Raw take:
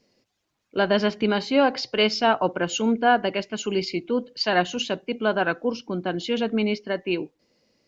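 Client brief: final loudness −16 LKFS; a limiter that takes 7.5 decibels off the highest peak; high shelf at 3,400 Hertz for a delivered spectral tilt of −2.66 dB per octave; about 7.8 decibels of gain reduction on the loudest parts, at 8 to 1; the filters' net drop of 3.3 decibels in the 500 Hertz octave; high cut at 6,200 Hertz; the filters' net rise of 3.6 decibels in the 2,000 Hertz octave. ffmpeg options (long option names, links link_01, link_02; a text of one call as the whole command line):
ffmpeg -i in.wav -af "lowpass=6200,equalizer=frequency=500:width_type=o:gain=-4.5,equalizer=frequency=2000:width_type=o:gain=6.5,highshelf=frequency=3400:gain=-4,acompressor=threshold=-22dB:ratio=8,volume=14.5dB,alimiter=limit=-4dB:level=0:latency=1" out.wav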